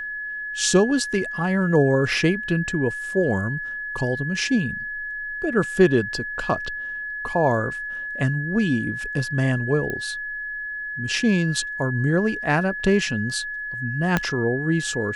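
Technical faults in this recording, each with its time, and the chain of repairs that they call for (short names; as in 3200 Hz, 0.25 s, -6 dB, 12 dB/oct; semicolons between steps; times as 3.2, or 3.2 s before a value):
tone 1700 Hz -28 dBFS
9.9 pop -15 dBFS
14.17 pop -6 dBFS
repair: de-click; notch 1700 Hz, Q 30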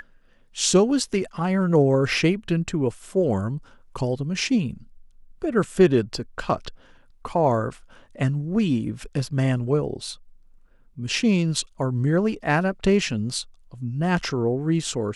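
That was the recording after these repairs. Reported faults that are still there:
14.17 pop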